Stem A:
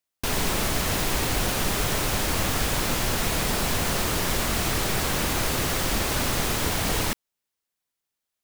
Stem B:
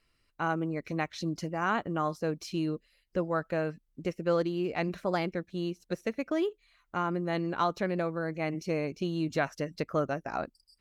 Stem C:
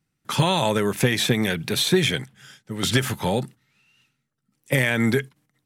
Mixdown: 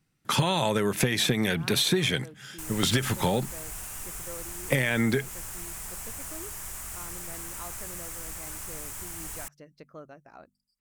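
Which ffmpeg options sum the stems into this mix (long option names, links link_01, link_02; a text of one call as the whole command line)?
ffmpeg -i stem1.wav -i stem2.wav -i stem3.wav -filter_complex "[0:a]equalizer=frequency=125:width_type=o:width=1:gain=-3,equalizer=frequency=250:width_type=o:width=1:gain=-10,equalizer=frequency=500:width_type=o:width=1:gain=-9,equalizer=frequency=4000:width_type=o:width=1:gain=-11,equalizer=frequency=8000:width_type=o:width=1:gain=9,equalizer=frequency=16000:width_type=o:width=1:gain=6,adelay=2350,volume=-15dB[link_01];[1:a]bandreject=frequency=48.49:width_type=h:width=4,bandreject=frequency=96.98:width_type=h:width=4,bandreject=frequency=145.47:width_type=h:width=4,bandreject=frequency=193.96:width_type=h:width=4,bandreject=frequency=242.45:width_type=h:width=4,volume=-16dB[link_02];[2:a]volume=2dB[link_03];[link_01][link_02][link_03]amix=inputs=3:normalize=0,acompressor=threshold=-21dB:ratio=6" out.wav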